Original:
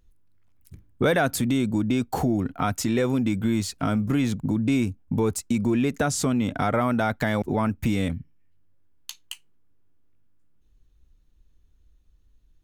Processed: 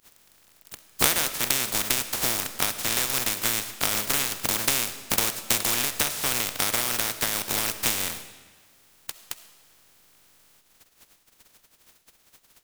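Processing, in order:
compressing power law on the bin magnitudes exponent 0.11
transient designer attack +7 dB, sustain −4 dB
comb and all-pass reverb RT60 1.4 s, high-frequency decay 0.95×, pre-delay 25 ms, DRR 11 dB
level −4 dB

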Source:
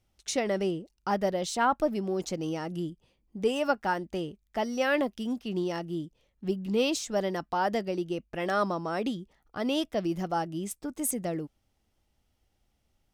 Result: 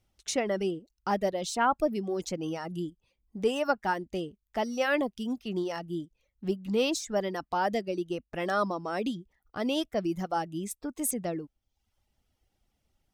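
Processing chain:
reverb reduction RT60 0.67 s

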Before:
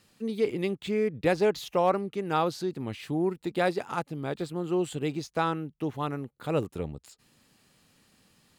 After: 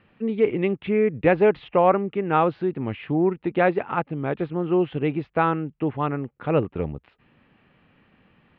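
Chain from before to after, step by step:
Butterworth low-pass 2,800 Hz 36 dB per octave
level +6.5 dB

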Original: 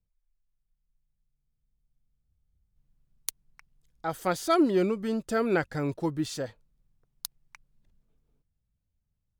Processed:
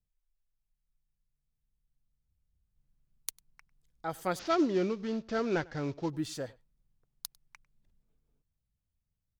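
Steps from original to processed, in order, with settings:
0:04.39–0:06.10: variable-slope delta modulation 32 kbit/s
slap from a distant wall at 17 metres, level −24 dB
level −4.5 dB

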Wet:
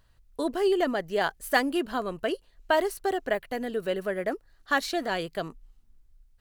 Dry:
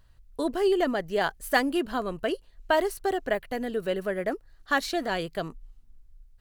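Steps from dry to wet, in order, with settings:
low-shelf EQ 130 Hz −6 dB

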